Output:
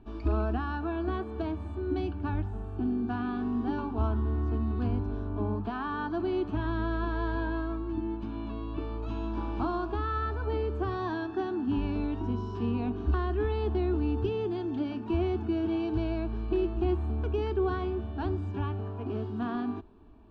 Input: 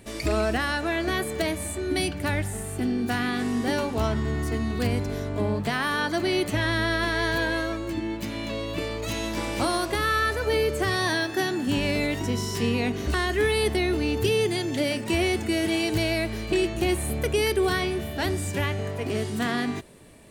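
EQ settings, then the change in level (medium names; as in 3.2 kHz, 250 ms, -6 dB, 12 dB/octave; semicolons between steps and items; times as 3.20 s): four-pole ladder low-pass 2.8 kHz, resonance 20%; bass shelf 150 Hz +11.5 dB; static phaser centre 540 Hz, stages 6; 0.0 dB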